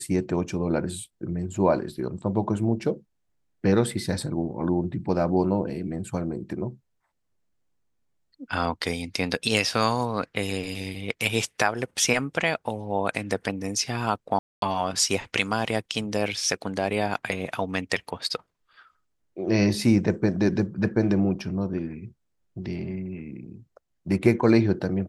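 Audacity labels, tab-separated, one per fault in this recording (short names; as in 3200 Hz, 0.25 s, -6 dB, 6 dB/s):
14.390000	14.620000	gap 0.232 s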